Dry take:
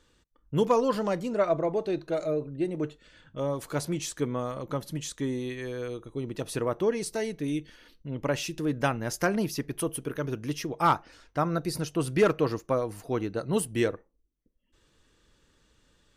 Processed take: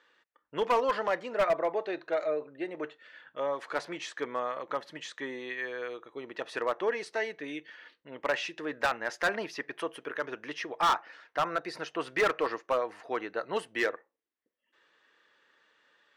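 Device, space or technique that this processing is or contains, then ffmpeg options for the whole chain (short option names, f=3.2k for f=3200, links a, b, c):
megaphone: -af "highpass=640,lowpass=2.9k,equalizer=f=1.8k:t=o:w=0.35:g=6.5,asoftclip=type=hard:threshold=-24dB,volume=3.5dB"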